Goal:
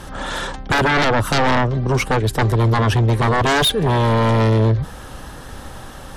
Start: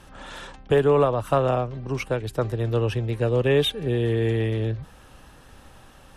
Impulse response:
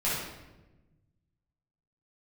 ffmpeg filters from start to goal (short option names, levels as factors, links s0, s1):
-af "aeval=exprs='0.376*sin(PI/2*5.01*val(0)/0.376)':c=same,equalizer=f=2600:t=o:w=0.33:g=-6.5,volume=0.668"